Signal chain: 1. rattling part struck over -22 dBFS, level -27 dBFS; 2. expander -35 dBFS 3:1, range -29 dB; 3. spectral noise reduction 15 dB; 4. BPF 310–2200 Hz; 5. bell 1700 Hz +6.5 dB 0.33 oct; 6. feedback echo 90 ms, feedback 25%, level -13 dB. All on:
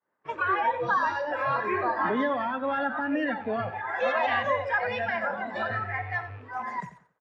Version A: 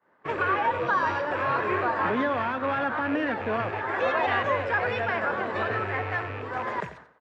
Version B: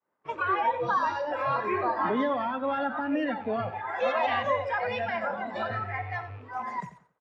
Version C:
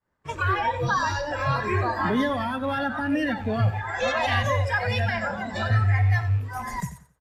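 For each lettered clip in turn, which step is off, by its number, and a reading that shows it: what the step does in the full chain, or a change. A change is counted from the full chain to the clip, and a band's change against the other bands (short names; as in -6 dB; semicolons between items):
3, 125 Hz band +3.0 dB; 5, 2 kHz band -4.5 dB; 4, 125 Hz band +17.0 dB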